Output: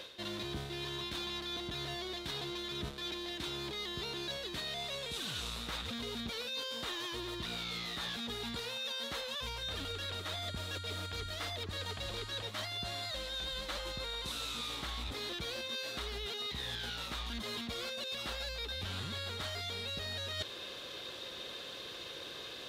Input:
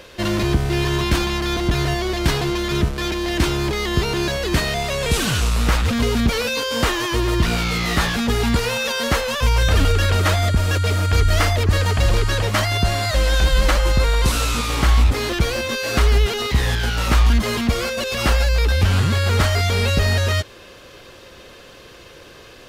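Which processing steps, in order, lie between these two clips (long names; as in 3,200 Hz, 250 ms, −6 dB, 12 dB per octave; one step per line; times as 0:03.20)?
high-pass filter 190 Hz 6 dB per octave
parametric band 3,700 Hz +13 dB 0.38 octaves
reversed playback
downward compressor 16 to 1, threshold −31 dBFS, peak gain reduction 18.5 dB
reversed playback
level −5.5 dB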